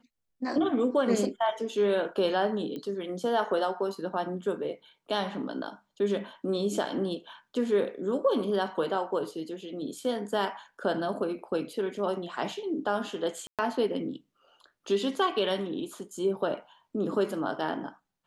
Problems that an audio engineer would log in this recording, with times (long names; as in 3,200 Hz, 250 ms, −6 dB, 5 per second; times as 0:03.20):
0:02.76: click −26 dBFS
0:13.47–0:13.59: drop-out 117 ms